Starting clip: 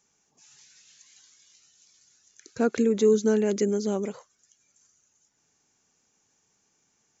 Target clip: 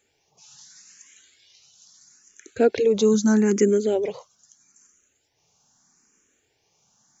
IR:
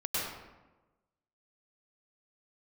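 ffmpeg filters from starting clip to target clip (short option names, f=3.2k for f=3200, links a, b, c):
-filter_complex "[0:a]asplit=2[a][b];[b]afreqshift=0.78[c];[a][c]amix=inputs=2:normalize=1,volume=8dB"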